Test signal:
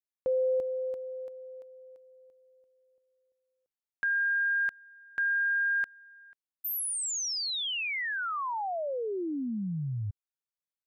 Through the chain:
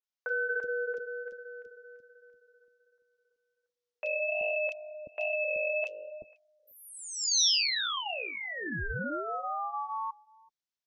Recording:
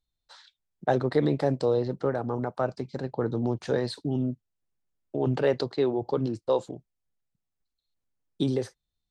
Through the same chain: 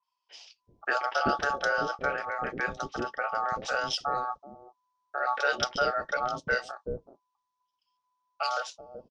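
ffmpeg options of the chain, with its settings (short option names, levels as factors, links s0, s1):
-filter_complex "[0:a]lowpass=f=4700:t=q:w=2.6,acontrast=30,flanger=delay=1.7:depth=8.2:regen=-45:speed=1.3:shape=sinusoidal,aeval=exprs='val(0)*sin(2*PI*1000*n/s)':c=same,acrossover=split=460|2600[s0][s1][s2];[s2]adelay=30[s3];[s0]adelay=380[s4];[s4][s1][s3]amix=inputs=3:normalize=0,adynamicequalizer=threshold=0.00891:dfrequency=3300:dqfactor=0.7:tfrequency=3300:tqfactor=0.7:attack=5:release=100:ratio=0.375:range=2:mode=boostabove:tftype=highshelf"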